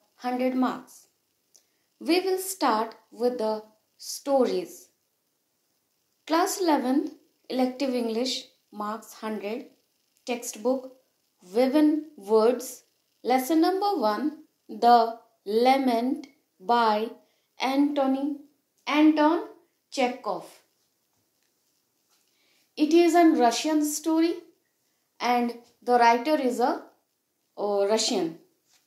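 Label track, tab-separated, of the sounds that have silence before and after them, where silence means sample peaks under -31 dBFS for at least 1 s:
2.020000	4.640000	sound
6.280000	20.390000	sound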